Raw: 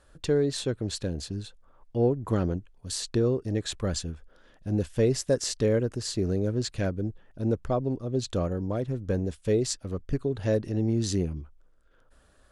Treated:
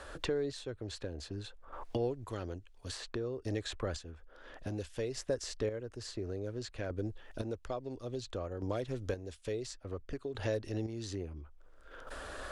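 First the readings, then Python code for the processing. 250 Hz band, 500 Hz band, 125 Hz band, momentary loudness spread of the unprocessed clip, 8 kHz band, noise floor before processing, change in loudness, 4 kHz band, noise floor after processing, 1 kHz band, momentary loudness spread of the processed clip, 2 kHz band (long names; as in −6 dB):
−12.5 dB, −9.5 dB, −12.5 dB, 9 LU, −13.0 dB, −60 dBFS, −11.0 dB, −9.0 dB, −58 dBFS, −6.5 dB, 11 LU, −4.0 dB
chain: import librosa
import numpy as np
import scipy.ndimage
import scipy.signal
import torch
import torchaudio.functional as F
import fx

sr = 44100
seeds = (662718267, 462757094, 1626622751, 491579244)

y = fx.recorder_agc(x, sr, target_db=-18.5, rise_db_per_s=11.0, max_gain_db=30)
y = fx.high_shelf(y, sr, hz=8800.0, db=-11.5)
y = fx.chopper(y, sr, hz=0.58, depth_pct=60, duty_pct=30)
y = fx.peak_eq(y, sr, hz=170.0, db=-14.0, octaves=1.2)
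y = fx.band_squash(y, sr, depth_pct=70)
y = F.gain(torch.from_numpy(y), -2.5).numpy()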